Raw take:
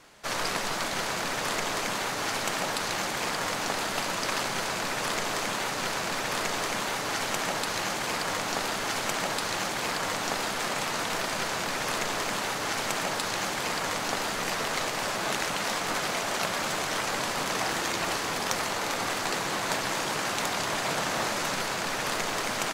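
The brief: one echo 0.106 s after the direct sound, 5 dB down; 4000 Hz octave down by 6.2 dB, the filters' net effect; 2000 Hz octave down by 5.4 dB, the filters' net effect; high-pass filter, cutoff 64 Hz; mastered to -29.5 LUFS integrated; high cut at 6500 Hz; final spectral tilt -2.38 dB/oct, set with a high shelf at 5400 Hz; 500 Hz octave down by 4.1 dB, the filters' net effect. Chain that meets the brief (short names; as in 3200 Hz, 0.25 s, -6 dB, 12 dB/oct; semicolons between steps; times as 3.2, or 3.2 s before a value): HPF 64 Hz; LPF 6500 Hz; bell 500 Hz -5 dB; bell 2000 Hz -5.5 dB; bell 4000 Hz -8.5 dB; high shelf 5400 Hz +6.5 dB; echo 0.106 s -5 dB; gain +2 dB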